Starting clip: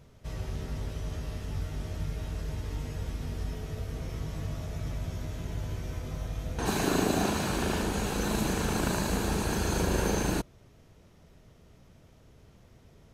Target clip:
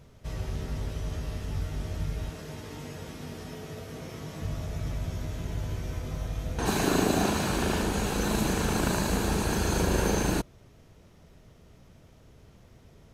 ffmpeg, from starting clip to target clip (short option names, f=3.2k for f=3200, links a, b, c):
-filter_complex "[0:a]asettb=1/sr,asplit=3[a][b][c];[a]atrim=end=2.304[d];[b]atrim=start=2.3:end=4.42,asetpts=PTS-STARTPTS,afade=t=in:d=0.004:c=qsin,afade=t=out:st=2.116:d=0.004:c=qsin,highpass=160[e];[c]atrim=start=4.416[f];[d][e]acrossfade=d=0.004:c1=hsin:c2=qsin[g];[g][f]acrossfade=d=0.004:c1=qsin:c2=hsin,volume=2dB"